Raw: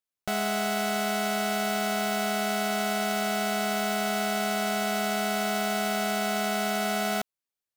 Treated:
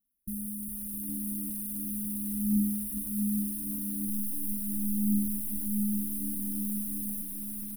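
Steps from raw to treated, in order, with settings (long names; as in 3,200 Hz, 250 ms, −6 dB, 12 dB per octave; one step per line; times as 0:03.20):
0:04.07–0:04.52: first-order pre-emphasis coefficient 0.9
soft clipping −34 dBFS, distortion −8 dB
phase shifter 0.39 Hz, delay 4 ms, feedback 75%
linear-phase brick-wall band-stop 320–9,200 Hz
phaser with its sweep stopped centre 580 Hz, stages 8
repeating echo 660 ms, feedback 32%, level −6 dB
feedback echo at a low word length 407 ms, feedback 80%, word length 11 bits, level −5 dB
level +8 dB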